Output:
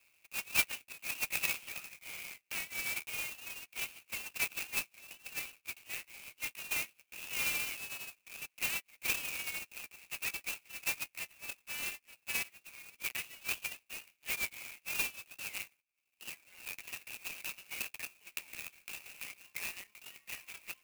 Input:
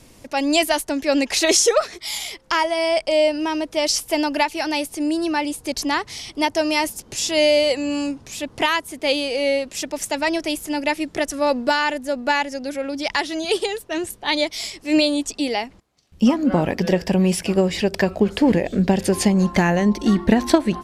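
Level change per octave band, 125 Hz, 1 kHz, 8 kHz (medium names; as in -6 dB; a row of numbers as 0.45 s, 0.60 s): -33.5 dB, -28.0 dB, -14.0 dB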